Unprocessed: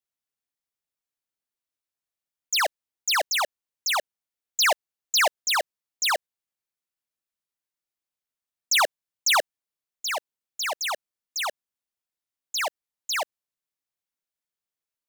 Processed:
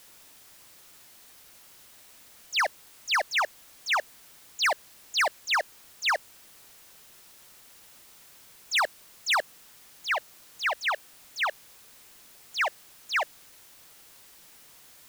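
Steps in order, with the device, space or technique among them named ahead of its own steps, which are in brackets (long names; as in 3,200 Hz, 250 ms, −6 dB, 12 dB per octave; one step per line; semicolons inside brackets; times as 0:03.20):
drive-through speaker (band-pass filter 510–3,000 Hz; parametric band 1,800 Hz +6 dB; hard clipping −21 dBFS, distortion −9 dB; white noise bed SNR 20 dB)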